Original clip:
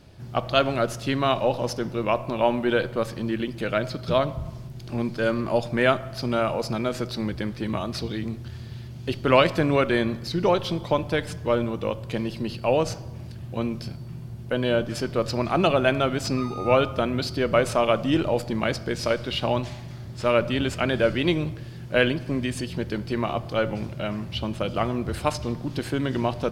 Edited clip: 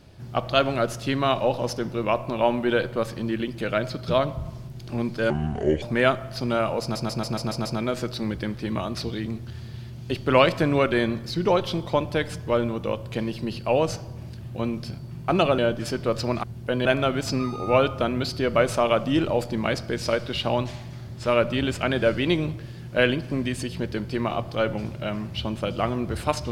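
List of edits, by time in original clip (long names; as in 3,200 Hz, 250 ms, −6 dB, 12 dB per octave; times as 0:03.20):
0:05.30–0:05.64: play speed 65%
0:06.63: stutter 0.14 s, 7 plays
0:14.26–0:14.68: swap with 0:15.53–0:15.83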